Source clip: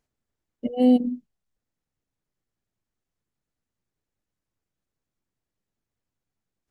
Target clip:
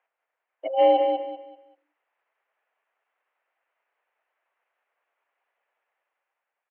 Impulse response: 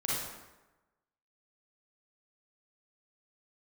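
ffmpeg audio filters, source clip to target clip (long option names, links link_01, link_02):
-af "dynaudnorm=framelen=240:gausssize=7:maxgain=6.5dB,highpass=frequency=570:width_type=q:width=0.5412,highpass=frequency=570:width_type=q:width=1.307,lowpass=frequency=2600:width_type=q:width=0.5176,lowpass=frequency=2600:width_type=q:width=0.7071,lowpass=frequency=2600:width_type=q:width=1.932,afreqshift=51,aecho=1:1:193|386|579|772:0.501|0.14|0.0393|0.011,volume=9dB"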